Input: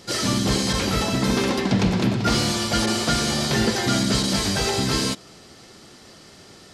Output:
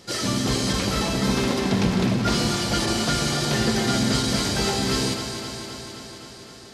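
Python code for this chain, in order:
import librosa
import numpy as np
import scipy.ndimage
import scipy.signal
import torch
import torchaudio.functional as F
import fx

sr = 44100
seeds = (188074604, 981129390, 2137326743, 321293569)

p1 = x + fx.echo_alternate(x, sr, ms=130, hz=860.0, feedback_pct=84, wet_db=-6, dry=0)
y = p1 * librosa.db_to_amplitude(-2.5)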